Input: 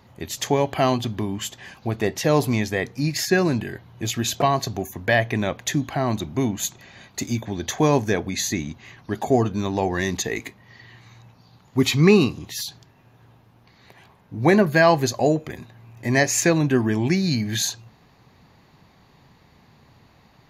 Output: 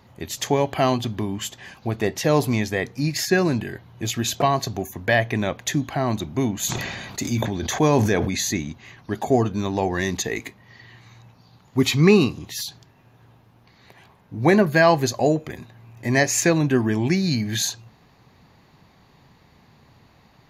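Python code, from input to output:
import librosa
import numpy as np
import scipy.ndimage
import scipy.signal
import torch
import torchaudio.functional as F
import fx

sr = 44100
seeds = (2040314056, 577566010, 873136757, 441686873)

y = fx.sustainer(x, sr, db_per_s=32.0, at=(6.55, 8.57))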